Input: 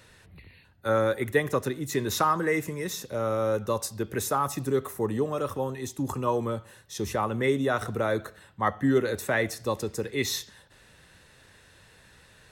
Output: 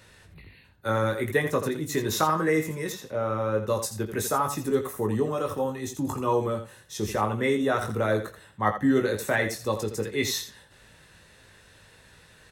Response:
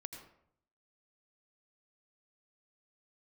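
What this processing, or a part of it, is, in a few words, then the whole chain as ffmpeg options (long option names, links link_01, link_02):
slapback doubling: -filter_complex "[0:a]asettb=1/sr,asplit=3[link_01][link_02][link_03];[link_01]atrim=end=2.924[link_04];[link_02]atrim=start=2.92:end=3.68,asetpts=PTS-STARTPTS,afade=type=in:duration=0.004:curve=qsin,afade=type=out:start_time=0.756:duration=0.004:curve=qsin,bass=frequency=250:gain=-2,treble=frequency=4000:gain=-12[link_05];[link_03]atrim=start=3.676[link_06];[link_04][link_05]acrossfade=duration=0.004:curve1=hsin:curve2=qsin[link_07];[link_07][link_06]acrossfade=duration=0.004:curve1=qsin:curve2=hsin,asplit=3[link_08][link_09][link_10];[link_09]adelay=19,volume=-5.5dB[link_11];[link_10]adelay=83,volume=-9.5dB[link_12];[link_08][link_11][link_12]amix=inputs=3:normalize=0"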